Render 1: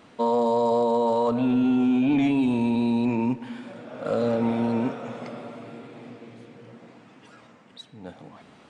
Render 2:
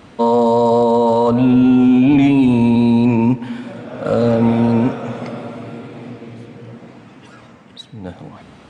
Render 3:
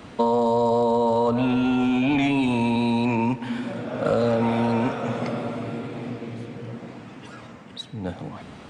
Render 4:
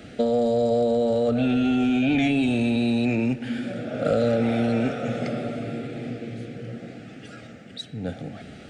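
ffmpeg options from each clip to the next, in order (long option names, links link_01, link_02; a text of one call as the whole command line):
ffmpeg -i in.wav -af "equalizer=frequency=61:width=0.59:gain=11.5,volume=8dB" out.wav
ffmpeg -i in.wav -filter_complex "[0:a]acrossover=split=91|570[link_01][link_02][link_03];[link_01]acompressor=threshold=-41dB:ratio=4[link_04];[link_02]acompressor=threshold=-24dB:ratio=4[link_05];[link_03]acompressor=threshold=-23dB:ratio=4[link_06];[link_04][link_05][link_06]amix=inputs=3:normalize=0" out.wav
ffmpeg -i in.wav -af "asuperstop=centerf=1000:order=4:qfactor=1.8" out.wav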